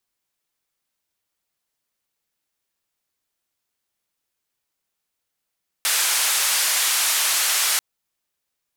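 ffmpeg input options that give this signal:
ffmpeg -f lavfi -i "anoisesrc=color=white:duration=1.94:sample_rate=44100:seed=1,highpass=frequency=970,lowpass=frequency=12000,volume=-12.6dB" out.wav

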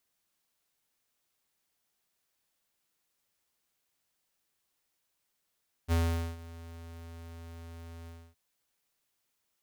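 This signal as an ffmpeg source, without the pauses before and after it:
ffmpeg -f lavfi -i "aevalsrc='0.0531*(2*lt(mod(83.4*t,1),0.5)-1)':duration=2.469:sample_rate=44100,afade=type=in:duration=0.041,afade=type=out:start_time=0.041:duration=0.441:silence=0.0944,afade=type=out:start_time=2.19:duration=0.279" out.wav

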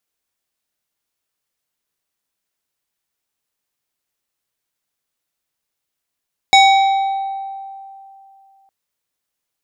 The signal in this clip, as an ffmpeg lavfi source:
ffmpeg -f lavfi -i "aevalsrc='0.596*pow(10,-3*t/2.72)*sin(2*PI*781*t+1.1*pow(10,-3*t/2.02)*sin(2*PI*3.88*781*t))':duration=2.16:sample_rate=44100" out.wav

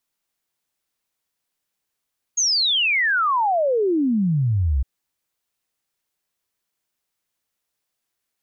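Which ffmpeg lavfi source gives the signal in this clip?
ffmpeg -f lavfi -i "aevalsrc='0.15*clip(min(t,2.46-t)/0.01,0,1)*sin(2*PI*6700*2.46/log(61/6700)*(exp(log(61/6700)*t/2.46)-1))':duration=2.46:sample_rate=44100" out.wav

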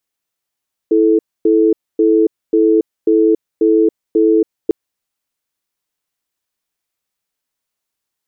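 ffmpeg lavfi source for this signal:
ffmpeg -f lavfi -i "aevalsrc='0.282*(sin(2*PI*328*t)+sin(2*PI*436*t))*clip(min(mod(t,0.54),0.28-mod(t,0.54))/0.005,0,1)':duration=3.8:sample_rate=44100" out.wav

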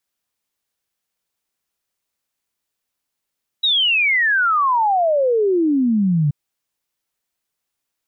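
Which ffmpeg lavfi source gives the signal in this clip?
ffmpeg -f lavfi -i "aevalsrc='0.211*clip(min(t,2.68-t)/0.01,0,1)*sin(2*PI*3900*2.68/log(140/3900)*(exp(log(140/3900)*t/2.68)-1))':duration=2.68:sample_rate=44100" out.wav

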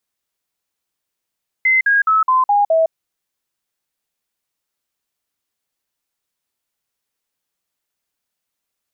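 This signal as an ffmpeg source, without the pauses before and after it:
ffmpeg -f lavfi -i "aevalsrc='0.299*clip(min(mod(t,0.21),0.16-mod(t,0.21))/0.005,0,1)*sin(2*PI*2060*pow(2,-floor(t/0.21)/3)*mod(t,0.21))':duration=1.26:sample_rate=44100" out.wav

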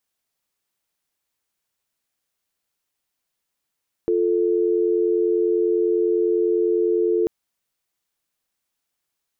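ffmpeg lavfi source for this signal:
ffmpeg -f lavfi -i "aevalsrc='0.106*(sin(2*PI*350*t)+sin(2*PI*440*t))':duration=3.19:sample_rate=44100" out.wav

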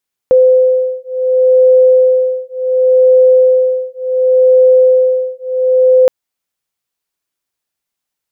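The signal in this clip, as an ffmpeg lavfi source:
ffmpeg -f lavfi -i "aevalsrc='0.335*(sin(2*PI*512*t)+sin(2*PI*512.69*t))':duration=5.77:sample_rate=44100" out.wav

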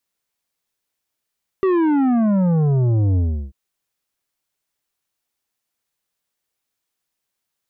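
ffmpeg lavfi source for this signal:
ffmpeg -f lavfi -i "aevalsrc='0.178*clip((1.89-t)/0.35,0,1)*tanh(2.99*sin(2*PI*390*1.89/log(65/390)*(exp(log(65/390)*t/1.89)-1)))/tanh(2.99)':duration=1.89:sample_rate=44100" out.wav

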